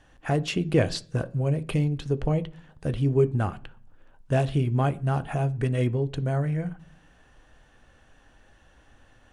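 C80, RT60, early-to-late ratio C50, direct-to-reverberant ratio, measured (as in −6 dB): 25.5 dB, 0.50 s, 21.0 dB, 10.5 dB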